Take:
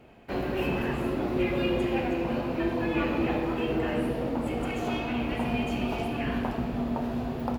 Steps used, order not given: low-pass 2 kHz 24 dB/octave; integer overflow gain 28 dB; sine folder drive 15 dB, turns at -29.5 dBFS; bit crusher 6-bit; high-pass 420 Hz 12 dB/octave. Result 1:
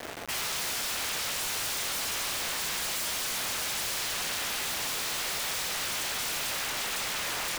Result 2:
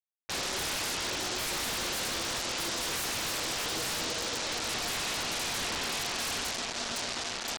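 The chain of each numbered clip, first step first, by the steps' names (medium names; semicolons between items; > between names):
low-pass > sine folder > high-pass > integer overflow > bit crusher; high-pass > bit crusher > low-pass > integer overflow > sine folder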